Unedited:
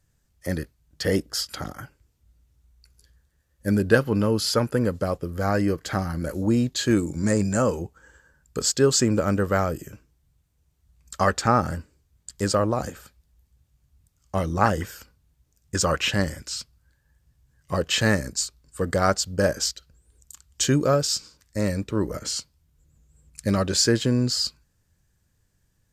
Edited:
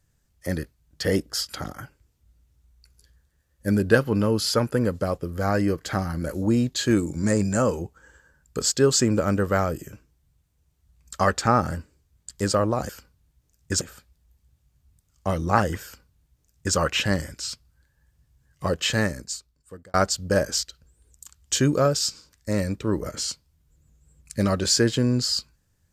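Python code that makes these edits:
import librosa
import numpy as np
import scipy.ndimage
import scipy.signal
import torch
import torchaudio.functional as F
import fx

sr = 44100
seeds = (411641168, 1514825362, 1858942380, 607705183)

y = fx.edit(x, sr, fx.duplicate(start_s=14.92, length_s=0.92, to_s=12.89),
    fx.fade_out_span(start_s=17.78, length_s=1.24), tone=tone)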